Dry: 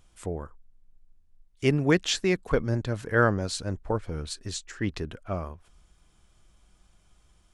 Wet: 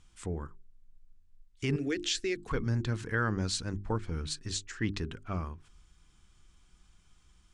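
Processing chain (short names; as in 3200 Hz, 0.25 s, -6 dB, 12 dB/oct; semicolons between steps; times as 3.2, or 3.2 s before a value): LPF 9100 Hz 24 dB/oct; bell 600 Hz -12 dB 0.79 oct; notches 50/100/150/200/250/300/350/400 Hz; limiter -19.5 dBFS, peak gain reduction 8 dB; 1.76–2.37 fixed phaser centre 400 Hz, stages 4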